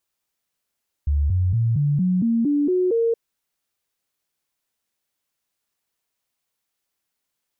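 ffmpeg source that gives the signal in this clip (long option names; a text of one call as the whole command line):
ffmpeg -f lavfi -i "aevalsrc='0.15*clip(min(mod(t,0.23),0.23-mod(t,0.23))/0.005,0,1)*sin(2*PI*72.5*pow(2,floor(t/0.23)/3)*mod(t,0.23))':duration=2.07:sample_rate=44100" out.wav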